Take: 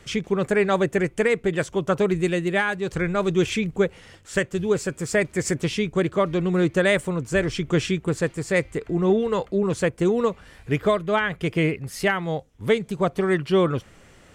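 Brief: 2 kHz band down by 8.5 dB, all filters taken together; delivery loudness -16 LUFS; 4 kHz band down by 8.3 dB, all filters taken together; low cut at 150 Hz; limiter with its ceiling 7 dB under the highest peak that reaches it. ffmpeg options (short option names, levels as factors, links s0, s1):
-af "highpass=150,equalizer=f=2000:t=o:g=-9,equalizer=f=4000:t=o:g=-7.5,volume=3.55,alimiter=limit=0.501:level=0:latency=1"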